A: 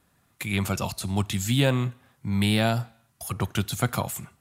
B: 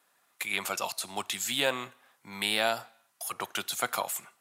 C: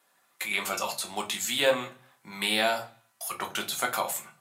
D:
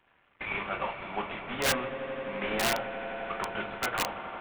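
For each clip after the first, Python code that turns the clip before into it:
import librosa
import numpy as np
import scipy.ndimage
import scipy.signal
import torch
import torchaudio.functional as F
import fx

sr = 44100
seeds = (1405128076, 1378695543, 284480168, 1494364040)

y1 = scipy.signal.sosfilt(scipy.signal.butter(2, 590.0, 'highpass', fs=sr, output='sos'), x)
y2 = fx.room_shoebox(y1, sr, seeds[0], volume_m3=120.0, walls='furnished', distance_m=1.1)
y3 = fx.cvsd(y2, sr, bps=16000)
y3 = fx.echo_swell(y3, sr, ms=85, loudest=5, wet_db=-15.5)
y3 = (np.mod(10.0 ** (20.5 / 20.0) * y3 + 1.0, 2.0) - 1.0) / 10.0 ** (20.5 / 20.0)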